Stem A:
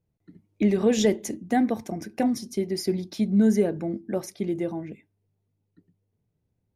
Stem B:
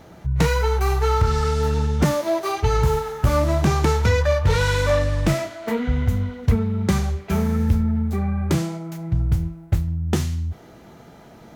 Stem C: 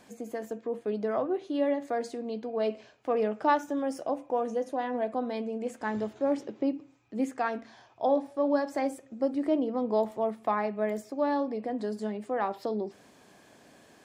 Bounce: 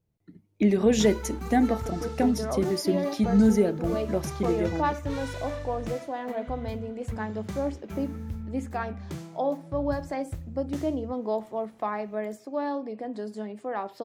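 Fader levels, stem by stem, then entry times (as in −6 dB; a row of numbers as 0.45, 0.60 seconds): 0.0, −16.5, −2.0 decibels; 0.00, 0.60, 1.35 seconds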